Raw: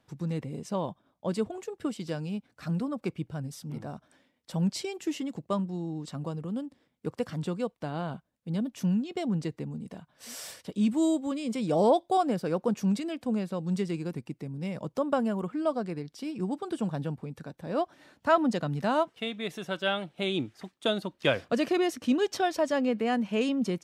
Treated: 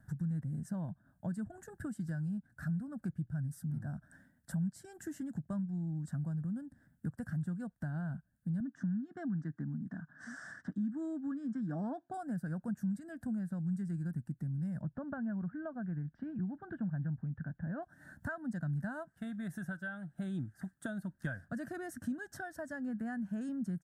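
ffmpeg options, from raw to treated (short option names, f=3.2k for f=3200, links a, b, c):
-filter_complex "[0:a]asettb=1/sr,asplit=3[a][b][c];[a]atrim=end=8.604[d];[b]atrim=start=8.6:end=12.14,asetpts=PTS-STARTPTS,afade=t=in:d=0.004:c=qsin,afade=t=out:st=3.536:d=0.004:c=qsin,highpass=170,equalizer=f=280:t=q:w=4:g=8,equalizer=f=550:t=q:w=4:g=-6,equalizer=f=1.2k:t=q:w=4:g=8,equalizer=f=1.7k:t=q:w=4:g=5,equalizer=f=2.6k:t=q:w=4:g=-8,equalizer=f=4.3k:t=q:w=4:g=-8,lowpass=f=5.4k:w=0.5412,lowpass=f=5.4k:w=1.3066[e];[c]atrim=start=12.136[f];[d][e]acrossfade=d=0.004:c1=hsin:c2=qsin[g];[g][f]acrossfade=d=0.004:c1=qsin:c2=hsin,asettb=1/sr,asplit=3[h][i][j];[h]atrim=end=14.824[k];[i]atrim=start=14.82:end=17.83,asetpts=PTS-STARTPTS,afade=t=in:d=0.004:c=qsin,afade=t=out:st=3.006:d=0.004:c=qsin,lowpass=f=2.7k:w=0.5412,lowpass=f=2.7k:w=1.3066[l];[j]atrim=start=17.826[m];[k][l]acrossfade=d=0.004:c1=hsin:c2=qsin[n];[n][m]acrossfade=d=0.004:c1=qsin:c2=hsin,firequalizer=gain_entry='entry(160,0);entry(440,-23);entry(650,-8);entry(1100,-14);entry(1600,8);entry(2300,-25);entry(8600,0)':delay=0.05:min_phase=1,acompressor=threshold=-52dB:ratio=3,lowshelf=f=450:g=10,volume=4dB"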